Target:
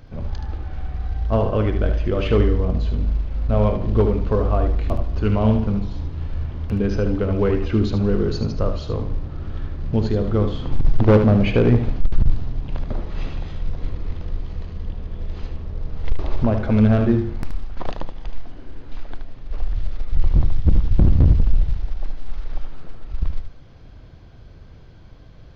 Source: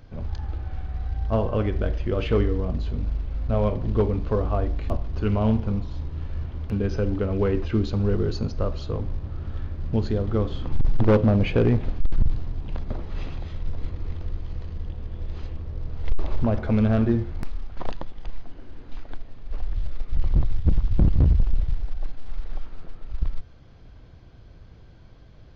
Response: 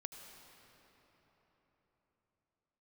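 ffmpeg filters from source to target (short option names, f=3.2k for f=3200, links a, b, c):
-filter_complex "[0:a]asplit=2[a][b];[1:a]atrim=start_sample=2205,afade=t=out:st=0.18:d=0.01,atrim=end_sample=8379,adelay=75[c];[b][c]afir=irnorm=-1:irlink=0,volume=-3dB[d];[a][d]amix=inputs=2:normalize=0,volume=3.5dB"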